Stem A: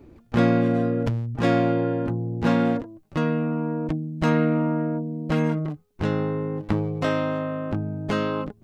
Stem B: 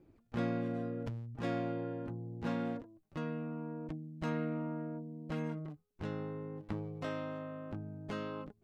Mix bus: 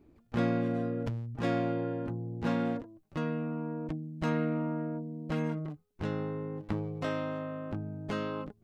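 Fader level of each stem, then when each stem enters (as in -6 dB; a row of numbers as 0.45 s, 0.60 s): -14.0 dB, -2.5 dB; 0.00 s, 0.00 s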